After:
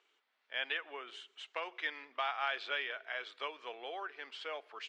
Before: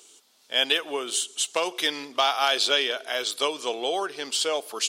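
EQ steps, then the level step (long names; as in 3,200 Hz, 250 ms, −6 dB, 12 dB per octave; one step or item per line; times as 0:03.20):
elliptic band-pass filter 100–2,000 Hz, stop band 80 dB
first difference
+5.5 dB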